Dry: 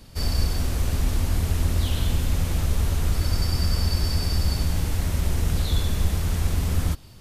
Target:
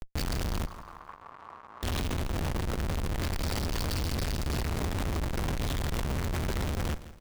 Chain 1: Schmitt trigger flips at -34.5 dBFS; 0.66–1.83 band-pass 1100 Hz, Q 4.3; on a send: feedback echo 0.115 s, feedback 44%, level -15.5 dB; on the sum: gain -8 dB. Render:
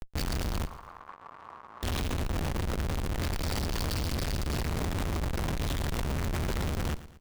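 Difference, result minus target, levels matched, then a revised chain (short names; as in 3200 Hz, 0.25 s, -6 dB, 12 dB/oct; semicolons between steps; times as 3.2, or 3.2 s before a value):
echo 51 ms early
Schmitt trigger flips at -34.5 dBFS; 0.66–1.83 band-pass 1100 Hz, Q 4.3; on a send: feedback echo 0.166 s, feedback 44%, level -15.5 dB; on the sum: gain -8 dB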